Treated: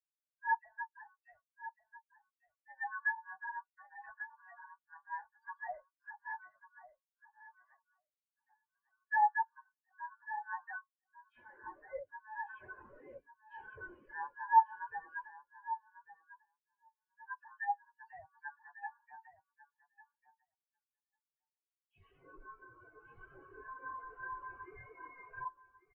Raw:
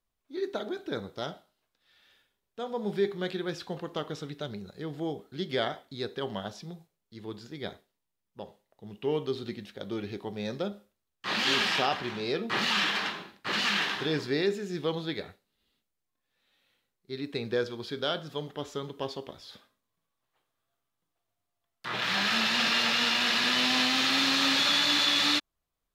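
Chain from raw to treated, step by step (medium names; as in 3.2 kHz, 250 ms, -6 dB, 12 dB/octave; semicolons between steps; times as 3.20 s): ring modulator 1.3 kHz; in parallel at -0.5 dB: peak limiter -21.5 dBFS, peak gain reduction 7.5 dB; on the sum: low-pass that closes with the level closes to 1.6 kHz, closed at -21.5 dBFS; phase dispersion lows, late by 105 ms, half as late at 2.8 kHz; hard clipper -25 dBFS, distortion -15 dB; flange 0.98 Hz, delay 7 ms, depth 1.7 ms, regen -63%; on a send: feedback delay 1146 ms, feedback 43%, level -3.5 dB; on the sum: spectral contrast expander 4:1; trim +7.5 dB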